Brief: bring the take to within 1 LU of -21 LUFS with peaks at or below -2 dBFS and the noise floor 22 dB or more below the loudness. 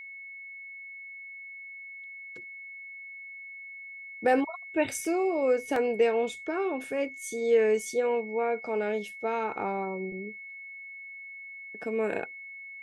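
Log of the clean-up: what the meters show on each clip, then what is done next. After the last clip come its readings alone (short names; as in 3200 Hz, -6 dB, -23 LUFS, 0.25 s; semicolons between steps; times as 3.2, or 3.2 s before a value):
dropouts 2; longest dropout 2.7 ms; steady tone 2200 Hz; tone level -41 dBFS; loudness -29.0 LUFS; peak -12.5 dBFS; loudness target -21.0 LUFS
-> interpolate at 5.05/5.76, 2.7 ms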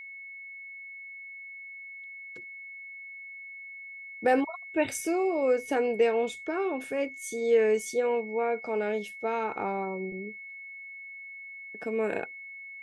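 dropouts 0; steady tone 2200 Hz; tone level -41 dBFS
-> notch 2200 Hz, Q 30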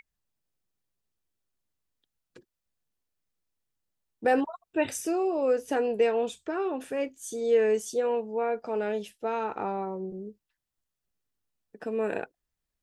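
steady tone none; loudness -29.0 LUFS; peak -12.5 dBFS; loudness target -21.0 LUFS
-> gain +8 dB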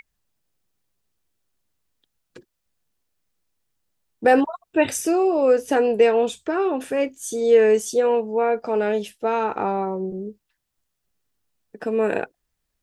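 loudness -21.0 LUFS; peak -4.5 dBFS; noise floor -78 dBFS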